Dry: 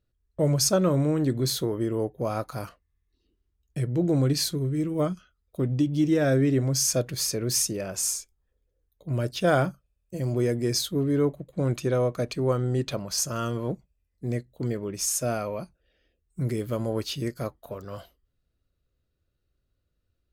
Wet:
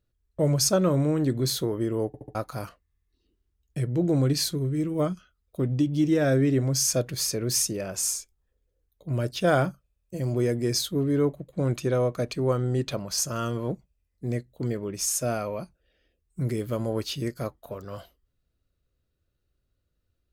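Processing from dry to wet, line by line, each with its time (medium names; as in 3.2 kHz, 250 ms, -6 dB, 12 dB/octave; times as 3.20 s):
2.07 s: stutter in place 0.07 s, 4 plays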